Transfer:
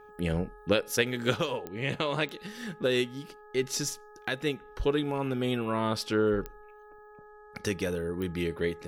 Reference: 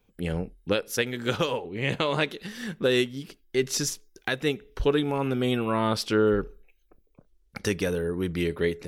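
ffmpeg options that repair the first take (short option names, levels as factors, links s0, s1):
-af "adeclick=t=4,bandreject=f=420.8:t=h:w=4,bandreject=f=841.6:t=h:w=4,bandreject=f=1262.4:t=h:w=4,bandreject=f=1683.2:t=h:w=4,asetnsamples=n=441:p=0,asendcmd='1.34 volume volume 4dB',volume=1"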